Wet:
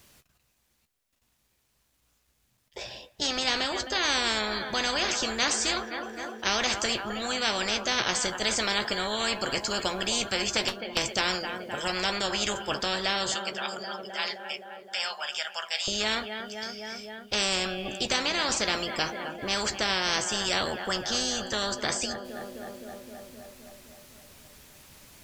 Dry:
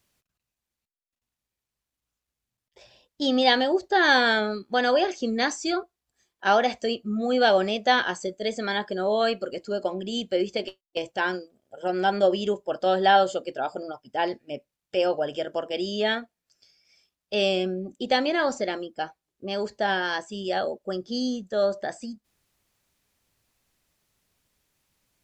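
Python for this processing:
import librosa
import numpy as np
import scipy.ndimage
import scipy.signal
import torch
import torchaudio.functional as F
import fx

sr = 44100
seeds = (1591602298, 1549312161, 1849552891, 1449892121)

y = fx.bessel_highpass(x, sr, hz=1600.0, order=8, at=(13.34, 15.88))
y = fx.rider(y, sr, range_db=4, speed_s=0.5)
y = fx.doubler(y, sr, ms=14.0, db=-12)
y = fx.echo_wet_lowpass(y, sr, ms=260, feedback_pct=64, hz=2600.0, wet_db=-23)
y = fx.spectral_comp(y, sr, ratio=4.0)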